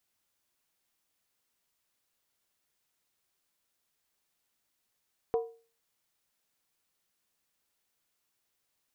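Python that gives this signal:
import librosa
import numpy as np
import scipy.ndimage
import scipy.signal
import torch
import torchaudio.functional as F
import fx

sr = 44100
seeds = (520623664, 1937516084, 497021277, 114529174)

y = fx.strike_skin(sr, length_s=0.63, level_db=-22.5, hz=459.0, decay_s=0.38, tilt_db=8.5, modes=5)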